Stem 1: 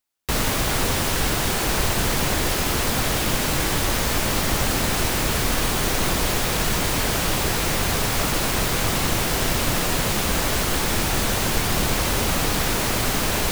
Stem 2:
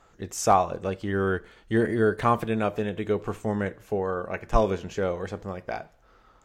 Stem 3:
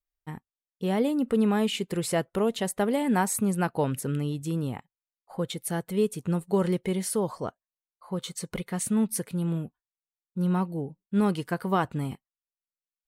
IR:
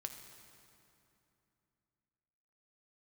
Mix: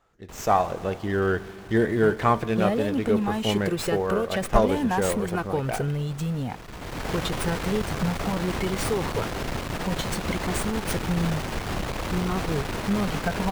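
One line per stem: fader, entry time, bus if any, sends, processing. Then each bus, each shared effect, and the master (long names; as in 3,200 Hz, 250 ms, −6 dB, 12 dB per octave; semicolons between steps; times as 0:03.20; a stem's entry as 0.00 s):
−11.0 dB, 0.00 s, send −18.5 dB, tube saturation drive 21 dB, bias 0.7; high-shelf EQ 3,300 Hz −10.5 dB; automatic ducking −21 dB, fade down 0.90 s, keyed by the second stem
−11.0 dB, 0.00 s, send −5.5 dB, no processing
0.0 dB, 1.75 s, no send, downward compressor 3 to 1, threshold −29 dBFS, peak gain reduction 8 dB; flanger whose copies keep moving one way rising 0.58 Hz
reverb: on, RT60 2.9 s, pre-delay 4 ms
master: automatic gain control gain up to 10 dB; windowed peak hold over 3 samples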